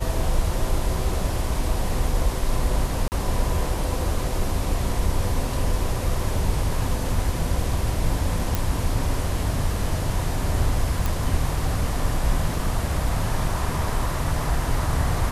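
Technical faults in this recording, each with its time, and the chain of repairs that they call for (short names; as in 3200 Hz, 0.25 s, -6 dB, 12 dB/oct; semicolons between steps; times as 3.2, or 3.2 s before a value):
3.08–3.12 gap 39 ms
8.55 pop
11.06 pop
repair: de-click; interpolate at 3.08, 39 ms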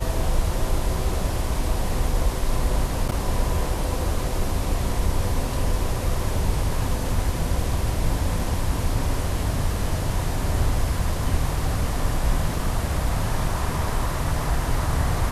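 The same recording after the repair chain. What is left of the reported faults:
none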